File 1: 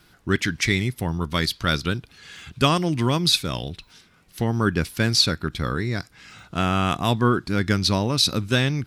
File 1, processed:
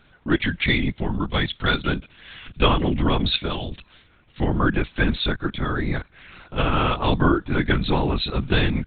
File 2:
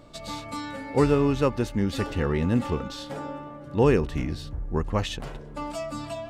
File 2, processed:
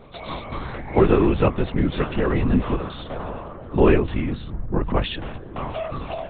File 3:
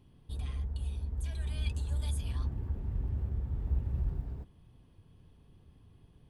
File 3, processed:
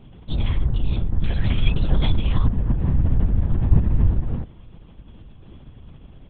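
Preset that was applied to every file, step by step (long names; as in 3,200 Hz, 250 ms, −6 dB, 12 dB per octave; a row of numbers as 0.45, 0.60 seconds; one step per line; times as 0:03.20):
linear-prediction vocoder at 8 kHz whisper
loudness normalisation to −23 LKFS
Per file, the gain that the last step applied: +1.5, +4.5, +16.0 decibels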